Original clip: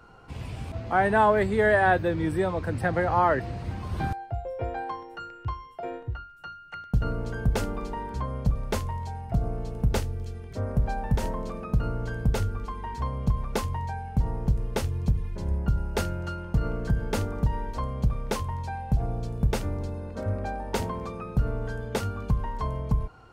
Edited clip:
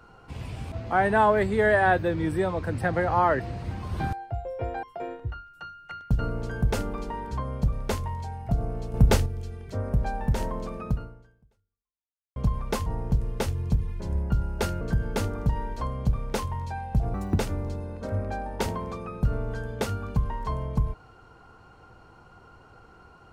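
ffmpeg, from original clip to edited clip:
-filter_complex "[0:a]asplit=9[a][b][c][d][e][f][g][h][i];[a]atrim=end=4.832[j];[b]atrim=start=5.658:end=9.772[k];[c]atrim=start=9.768:end=10.092,asetpts=PTS-STARTPTS,volume=6dB[l];[d]atrim=start=10.088:end=13.19,asetpts=PTS-STARTPTS,afade=t=out:st=1.632:d=1.47:c=exp[m];[e]atrim=start=13.19:end=13.692,asetpts=PTS-STARTPTS,afade=t=in:d=0.004:c=hsin[n];[f]atrim=start=14.218:end=16.172[o];[g]atrim=start=16.778:end=19.114[p];[h]atrim=start=19.11:end=19.53,asetpts=PTS-STARTPTS,asetrate=73647,aresample=44100,atrim=end_sample=11091,asetpts=PTS-STARTPTS[q];[i]atrim=start=19.526[r];[j][k]acrossfade=d=0.004:c1=hsin:c2=hsin[s];[s][l]acrossfade=d=0.004:c1=hsin:c2=hsin[t];[m][n]concat=n=2:v=0:a=1[u];[t][u]acrossfade=d=0.004:c1=hsin:c2=hsin[v];[v][o]acrossfade=d=0.004:c1=hsin:c2=hsin[w];[w][p]acrossfade=d=0.004:c1=hsin:c2=hsin[x];[x][q]acrossfade=d=0.004:c1=hsin:c2=hsin[y];[y][r]acrossfade=d=0.004:c1=hsin:c2=hsin"

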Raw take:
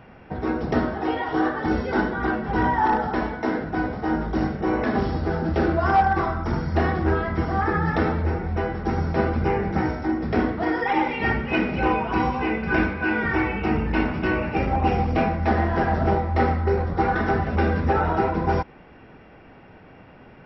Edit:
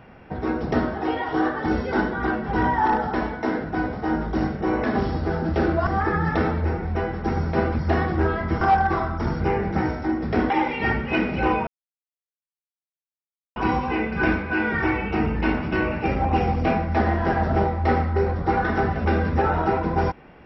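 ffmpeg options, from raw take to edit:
-filter_complex "[0:a]asplit=7[a][b][c][d][e][f][g];[a]atrim=end=5.872[h];[b]atrim=start=7.478:end=9.402[i];[c]atrim=start=6.658:end=7.482[j];[d]atrim=start=5.868:end=6.662[k];[e]atrim=start=9.398:end=10.502[l];[f]atrim=start=10.898:end=12.07,asetpts=PTS-STARTPTS,afade=t=out:st=1.168:d=0.004:c=hsin,apad=pad_dur=1.89[m];[g]atrim=start=12.07,asetpts=PTS-STARTPTS,afade=t=in:d=0.004:c=hsin[n];[h][i]acrossfade=d=0.004:c1=hsin:c2=hsin[o];[o][j]acrossfade=d=0.004:c1=hsin:c2=hsin[p];[p][k]acrossfade=d=0.004:c1=hsin:c2=hsin[q];[q][l]acrossfade=d=0.004:c1=hsin:c2=hsin[r];[m][n]concat=n=2:v=0:a=1[s];[r][s]acrossfade=d=0.004:c1=hsin:c2=hsin"

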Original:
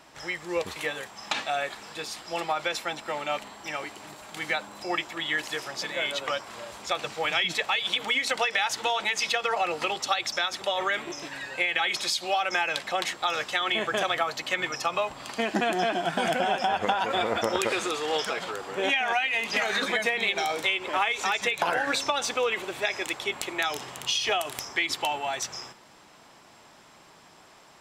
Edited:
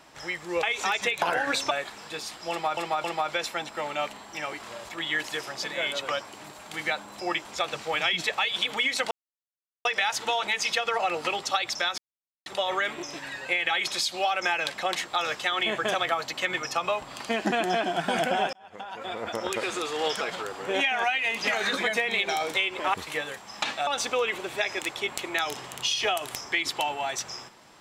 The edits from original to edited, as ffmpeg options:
-filter_complex "[0:a]asplit=14[a][b][c][d][e][f][g][h][i][j][k][l][m][n];[a]atrim=end=0.632[o];[b]atrim=start=21.028:end=22.112[p];[c]atrim=start=1.558:end=2.622[q];[d]atrim=start=2.348:end=2.622[r];[e]atrim=start=2.348:end=3.912[s];[f]atrim=start=6.468:end=6.762[t];[g]atrim=start=5.078:end=6.472[u];[h]atrim=start=3.908:end=5.082[v];[i]atrim=start=6.758:end=8.42,asetpts=PTS-STARTPTS,afade=t=out:st=1.658:d=0.004:c=hsin,apad=pad_dur=0.74[w];[j]atrim=start=8.42:end=10.55,asetpts=PTS-STARTPTS,afade=t=in:d=0.004:c=hsin,afade=t=out:st=2.126:d=0.004:c=hsin,apad=pad_dur=0.48[x];[k]atrim=start=10.55:end=16.62,asetpts=PTS-STARTPTS,afade=t=in:d=0.004:c=hsin,afade=t=out:st=6.066:d=0.004:c=hsin[y];[l]atrim=start=16.62:end=21.032,asetpts=PTS-STARTPTS,afade=t=in:d=1.51[z];[m]atrim=start=0.628:end=1.562[aa];[n]atrim=start=22.108[ab];[o][p]acrossfade=d=0.004:c1=hsin:c2=hsin[ac];[ac][q]acrossfade=d=0.004:c1=hsin:c2=hsin[ad];[ad][r]acrossfade=d=0.004:c1=hsin:c2=hsin[ae];[ae][s]acrossfade=d=0.004:c1=hsin:c2=hsin[af];[af][t]acrossfade=d=0.004:c1=hsin:c2=hsin[ag];[ag][u]acrossfade=d=0.004:c1=hsin:c2=hsin[ah];[ah][v]acrossfade=d=0.004:c1=hsin:c2=hsin[ai];[w][x][y][z]concat=n=4:v=0:a=1[aj];[ai][aj]acrossfade=d=0.004:c1=hsin:c2=hsin[ak];[ak][aa]acrossfade=d=0.004:c1=hsin:c2=hsin[al];[al][ab]acrossfade=d=0.004:c1=hsin:c2=hsin"

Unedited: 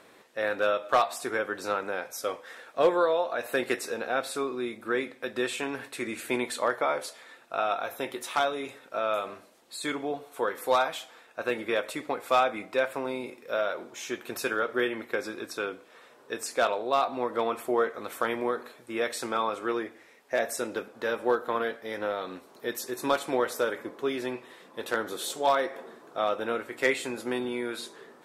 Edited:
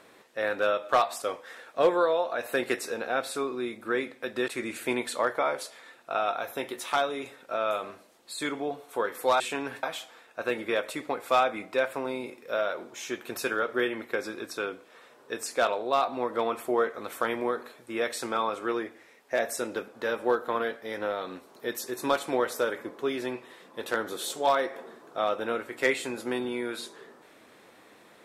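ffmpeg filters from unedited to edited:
-filter_complex "[0:a]asplit=5[a][b][c][d][e];[a]atrim=end=1.222[f];[b]atrim=start=2.218:end=5.482[g];[c]atrim=start=5.908:end=10.832[h];[d]atrim=start=5.478:end=5.912[i];[e]atrim=start=10.828[j];[f][g]acrossfade=d=0.004:c1=hsin:c2=hsin[k];[k][h]acrossfade=d=0.004:c1=hsin:c2=hsin[l];[l][i]acrossfade=d=0.004:c1=hsin:c2=hsin[m];[m][j]acrossfade=d=0.004:c1=hsin:c2=hsin"

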